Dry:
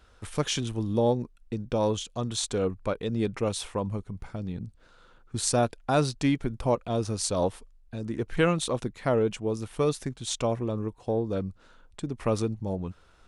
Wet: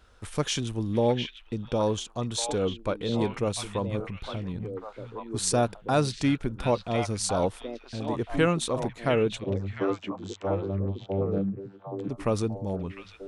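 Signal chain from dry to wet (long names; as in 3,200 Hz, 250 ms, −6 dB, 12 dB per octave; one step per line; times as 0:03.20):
0:09.44–0:12.08: channel vocoder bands 32, saw 97.6 Hz
echo through a band-pass that steps 702 ms, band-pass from 2,500 Hz, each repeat −1.4 octaves, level −1.5 dB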